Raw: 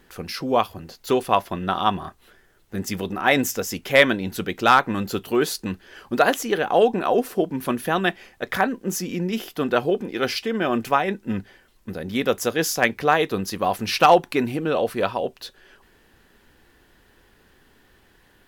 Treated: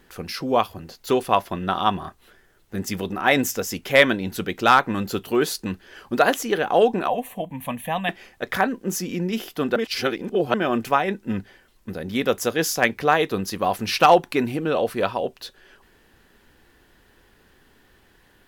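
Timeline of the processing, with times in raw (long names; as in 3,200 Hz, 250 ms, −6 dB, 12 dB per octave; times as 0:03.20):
0:07.08–0:08.09: phaser with its sweep stopped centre 1,400 Hz, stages 6
0:09.76–0:10.54: reverse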